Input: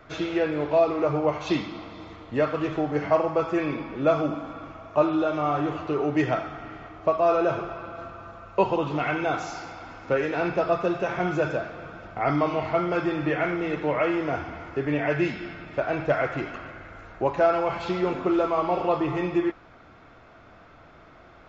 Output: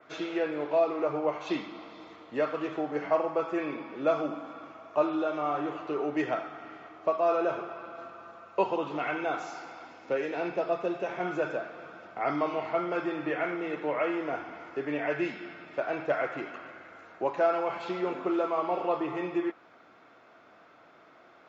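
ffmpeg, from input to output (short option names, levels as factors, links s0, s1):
-filter_complex "[0:a]asettb=1/sr,asplit=3[s0][s1][s2];[s0]atrim=end=9.874[s3];[s1]atrim=start=9.87:end=11.21,asetpts=PTS-STARTPTS,afade=t=in:d=0.004:c=qsin,afade=t=out:st=1.336:d=0.004:c=qsin,equalizer=f=1300:t=o:w=0.77:g=-5.5[s4];[s2]atrim=start=11.206[s5];[s3][s4]acrossfade=d=0.004:c1=hsin:c2=qsin[s6];[s6][s5]acrossfade=d=0.004:c1=qsin:c2=hsin,highpass=260,adynamicequalizer=threshold=0.00316:dfrequency=5300:dqfactor=1.1:tfrequency=5300:tqfactor=1.1:attack=5:release=100:ratio=0.375:range=2.5:mode=cutabove:tftype=bell,volume=0.596"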